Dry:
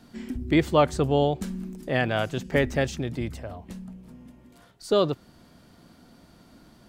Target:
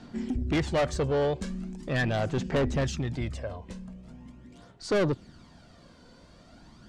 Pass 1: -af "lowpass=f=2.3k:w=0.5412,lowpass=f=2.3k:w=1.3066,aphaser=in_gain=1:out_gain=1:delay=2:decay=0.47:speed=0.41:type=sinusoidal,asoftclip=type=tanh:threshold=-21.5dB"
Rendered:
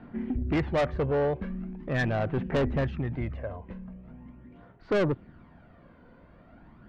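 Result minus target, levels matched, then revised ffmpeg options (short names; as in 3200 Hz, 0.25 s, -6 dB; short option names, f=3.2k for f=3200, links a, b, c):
8000 Hz band -14.5 dB
-af "lowpass=f=8.1k:w=0.5412,lowpass=f=8.1k:w=1.3066,aphaser=in_gain=1:out_gain=1:delay=2:decay=0.47:speed=0.41:type=sinusoidal,asoftclip=type=tanh:threshold=-21.5dB"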